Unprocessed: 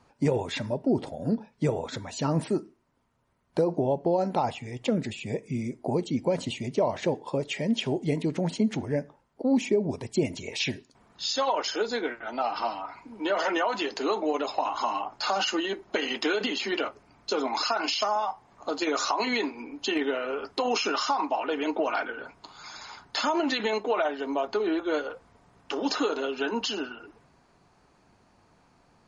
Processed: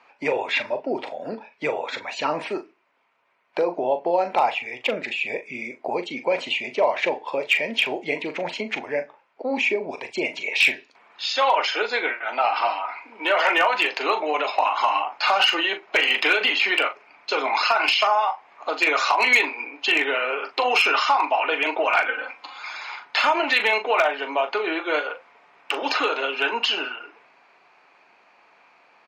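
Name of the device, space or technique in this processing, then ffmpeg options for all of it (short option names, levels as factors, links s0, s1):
megaphone: -filter_complex "[0:a]highpass=630,lowpass=3400,equalizer=f=2400:t=o:w=0.47:g=10.5,asoftclip=type=hard:threshold=0.119,asplit=2[s0][s1];[s1]adelay=40,volume=0.316[s2];[s0][s2]amix=inputs=2:normalize=0,asettb=1/sr,asplit=3[s3][s4][s5];[s3]atrim=end=22.084[s6];[s4]atrim=start=22.08:end=22.59,asetpts=PTS-STARTPTS,afade=t=in:d=0.004:c=qsin,afade=t=out:st=0.506:d=0.004:c=qsin,aecho=1:1:3.8:0.87,atrim=end_sample=22491[s7];[s5]atrim=start=22.586[s8];[s6][s7]acrossfade=d=0.004:c1=hsin:c2=qsin[s9];[s9][s8]acrossfade=d=0.004:c1=qsin:c2=hsin,volume=2.51"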